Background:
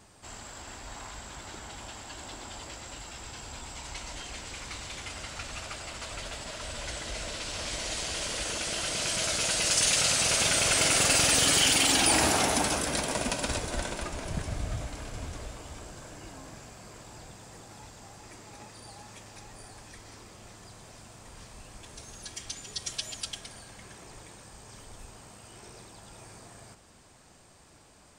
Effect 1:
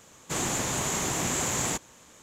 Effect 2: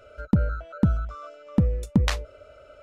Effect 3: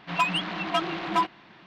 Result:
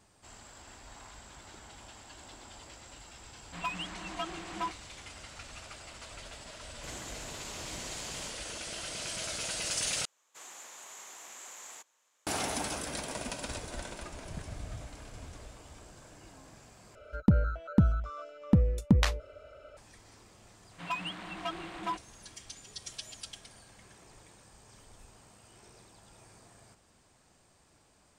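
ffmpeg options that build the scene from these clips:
ffmpeg -i bed.wav -i cue0.wav -i cue1.wav -i cue2.wav -filter_complex "[3:a]asplit=2[link_01][link_02];[1:a]asplit=2[link_03][link_04];[0:a]volume=-8dB[link_05];[link_04]highpass=710[link_06];[link_05]asplit=3[link_07][link_08][link_09];[link_07]atrim=end=10.054[link_10];[link_06]atrim=end=2.22,asetpts=PTS-STARTPTS,volume=-18dB[link_11];[link_08]atrim=start=12.266:end=16.954[link_12];[2:a]atrim=end=2.82,asetpts=PTS-STARTPTS,volume=-2.5dB[link_13];[link_09]atrim=start=19.766[link_14];[link_01]atrim=end=1.66,asetpts=PTS-STARTPTS,volume=-11.5dB,afade=type=in:duration=0.004:curve=hsin,afade=type=out:start_time=1.656:duration=0.004:curve=hsin,adelay=152145S[link_15];[link_03]atrim=end=2.22,asetpts=PTS-STARTPTS,volume=-17dB,afade=type=in:duration=0.004:curve=hsin,afade=type=out:start_time=2.216:duration=0.004:curve=hsin,adelay=6530[link_16];[link_02]atrim=end=1.66,asetpts=PTS-STARTPTS,volume=-11dB,afade=type=in:duration=0.004:curve=hsin,afade=type=out:start_time=1.656:duration=0.004:curve=hsin,adelay=20710[link_17];[link_10][link_11]acrossfade=duration=0.004:curve1=hsin:curve2=hsin[link_18];[link_18][link_12]acrossfade=duration=0.004:curve1=hsin:curve2=hsin[link_19];[link_19][link_13]acrossfade=duration=0.004:curve1=hsin:curve2=hsin[link_20];[link_20][link_14]acrossfade=duration=0.004:curve1=hsin:curve2=hsin[link_21];[link_21][link_15][link_16][link_17]amix=inputs=4:normalize=0" out.wav

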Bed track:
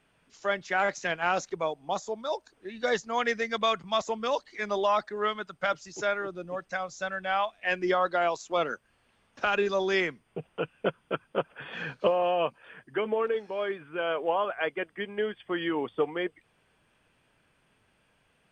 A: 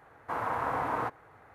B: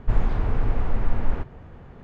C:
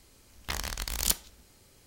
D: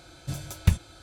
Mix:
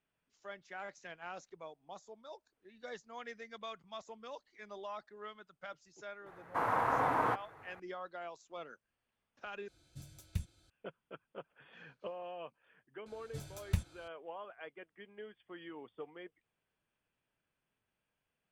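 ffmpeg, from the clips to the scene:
ffmpeg -i bed.wav -i cue0.wav -i cue1.wav -i cue2.wav -i cue3.wav -filter_complex "[4:a]asplit=2[link_01][link_02];[0:a]volume=-19dB[link_03];[1:a]equalizer=frequency=71:width=3.8:gain=-13.5[link_04];[link_01]equalizer=frequency=940:width_type=o:width=2.1:gain=-8.5[link_05];[link_03]asplit=2[link_06][link_07];[link_06]atrim=end=9.684[link_08];[link_05]atrim=end=1.02,asetpts=PTS-STARTPTS,volume=-16.5dB[link_09];[link_07]atrim=start=10.696[link_10];[link_04]atrim=end=1.54,asetpts=PTS-STARTPTS,afade=type=in:duration=0.004:curve=hsin,afade=type=out:start_time=1.536:duration=0.004:curve=hsin,adelay=276066S[link_11];[link_02]atrim=end=1.02,asetpts=PTS-STARTPTS,volume=-12dB,afade=type=in:duration=0.004:curve=hsin,afade=type=out:start_time=1.016:duration=0.004:curve=hsin,adelay=13060[link_12];[link_08][link_09]acrossfade=duration=0.004:curve1=hsin:curve2=hsin[link_13];[link_13][link_10]acrossfade=duration=0.004:curve1=hsin:curve2=hsin[link_14];[link_14][link_11][link_12]amix=inputs=3:normalize=0" out.wav

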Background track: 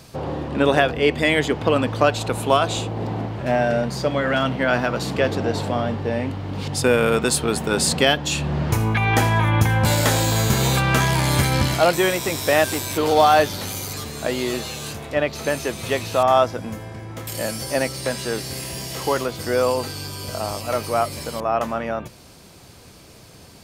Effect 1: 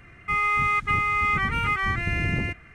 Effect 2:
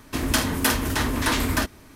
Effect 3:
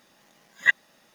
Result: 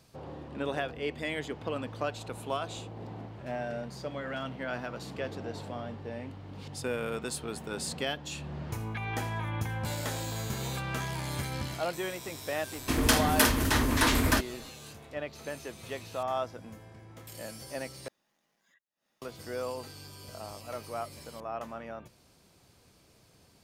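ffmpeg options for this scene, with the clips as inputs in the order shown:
ffmpeg -i bed.wav -i cue0.wav -i cue1.wav -i cue2.wav -filter_complex "[0:a]volume=-16dB[link_01];[3:a]acompressor=threshold=-47dB:ratio=16:attack=1.6:release=121:knee=6:detection=rms[link_02];[link_01]asplit=2[link_03][link_04];[link_03]atrim=end=18.084[link_05];[link_02]atrim=end=1.14,asetpts=PTS-STARTPTS,volume=-17dB[link_06];[link_04]atrim=start=19.216[link_07];[2:a]atrim=end=1.95,asetpts=PTS-STARTPTS,volume=-2dB,afade=type=in:duration=0.004:curve=hsin,afade=type=out:start_time=1.946:duration=0.004:curve=hsin,adelay=12750[link_08];[link_05][link_06]acrossfade=duration=0.004:curve1=hsin:curve2=hsin[link_09];[link_09][link_07]acrossfade=duration=0.004:curve1=hsin:curve2=hsin[link_10];[link_10][link_08]amix=inputs=2:normalize=0" out.wav

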